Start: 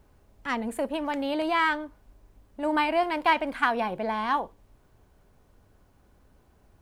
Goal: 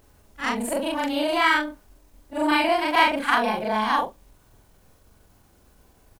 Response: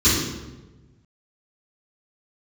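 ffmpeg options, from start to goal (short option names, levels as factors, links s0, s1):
-af "afftfilt=real='re':imag='-im':win_size=4096:overlap=0.75,highshelf=f=3400:g=10.5,atempo=1.1,volume=2.37"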